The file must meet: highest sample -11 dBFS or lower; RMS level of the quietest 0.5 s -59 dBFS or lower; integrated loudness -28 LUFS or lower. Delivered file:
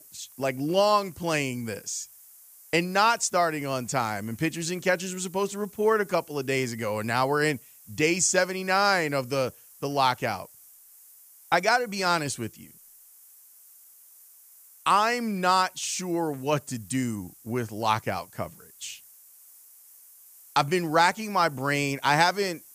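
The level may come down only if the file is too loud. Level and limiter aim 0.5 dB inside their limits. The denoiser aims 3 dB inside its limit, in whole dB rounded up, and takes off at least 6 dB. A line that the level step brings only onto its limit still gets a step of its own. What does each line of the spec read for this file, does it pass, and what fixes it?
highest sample -8.5 dBFS: fail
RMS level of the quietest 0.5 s -53 dBFS: fail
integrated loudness -26.0 LUFS: fail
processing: denoiser 7 dB, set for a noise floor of -53 dBFS; gain -2.5 dB; limiter -11.5 dBFS

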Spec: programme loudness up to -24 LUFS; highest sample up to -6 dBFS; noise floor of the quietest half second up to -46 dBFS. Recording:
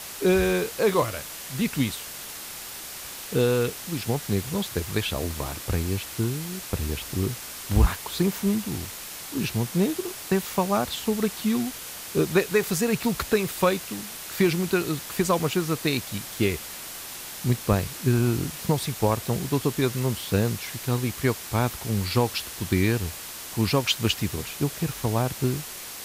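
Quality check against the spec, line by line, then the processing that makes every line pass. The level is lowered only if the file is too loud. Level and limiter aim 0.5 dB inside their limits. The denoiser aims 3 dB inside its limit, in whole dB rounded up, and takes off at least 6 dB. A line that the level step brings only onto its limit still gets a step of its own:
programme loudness -26.5 LUFS: OK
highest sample -8.5 dBFS: OK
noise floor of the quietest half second -38 dBFS: fail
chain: denoiser 11 dB, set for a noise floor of -38 dBFS

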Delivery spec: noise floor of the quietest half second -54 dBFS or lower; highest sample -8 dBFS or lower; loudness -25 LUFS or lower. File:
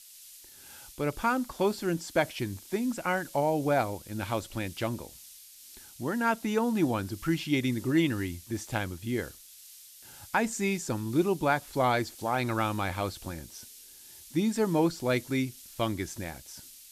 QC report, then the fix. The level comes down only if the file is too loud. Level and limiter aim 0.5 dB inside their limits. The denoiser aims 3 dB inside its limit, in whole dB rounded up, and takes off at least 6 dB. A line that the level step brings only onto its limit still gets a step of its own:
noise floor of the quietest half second -51 dBFS: fail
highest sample -12.5 dBFS: OK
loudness -30.0 LUFS: OK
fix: denoiser 6 dB, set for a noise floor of -51 dBFS

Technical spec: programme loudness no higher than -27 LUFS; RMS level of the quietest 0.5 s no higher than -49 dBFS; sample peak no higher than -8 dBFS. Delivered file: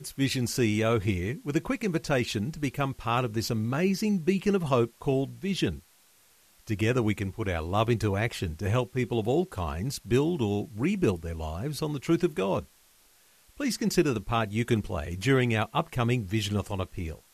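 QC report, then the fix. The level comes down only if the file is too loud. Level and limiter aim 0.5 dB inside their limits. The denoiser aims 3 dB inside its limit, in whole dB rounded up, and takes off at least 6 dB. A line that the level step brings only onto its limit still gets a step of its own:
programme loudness -28.5 LUFS: OK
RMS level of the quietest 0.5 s -61 dBFS: OK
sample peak -11.0 dBFS: OK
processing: none

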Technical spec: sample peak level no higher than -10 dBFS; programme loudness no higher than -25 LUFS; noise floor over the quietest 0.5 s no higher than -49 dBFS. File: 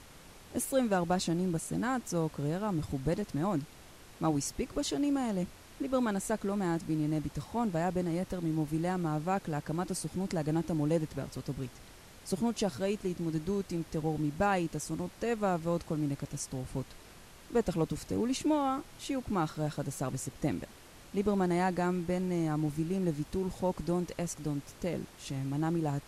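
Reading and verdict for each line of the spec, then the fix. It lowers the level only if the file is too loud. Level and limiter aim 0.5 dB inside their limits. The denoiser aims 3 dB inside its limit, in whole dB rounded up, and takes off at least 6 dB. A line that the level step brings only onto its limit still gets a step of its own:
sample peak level -17.0 dBFS: OK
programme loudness -33.5 LUFS: OK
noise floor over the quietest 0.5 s -53 dBFS: OK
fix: none

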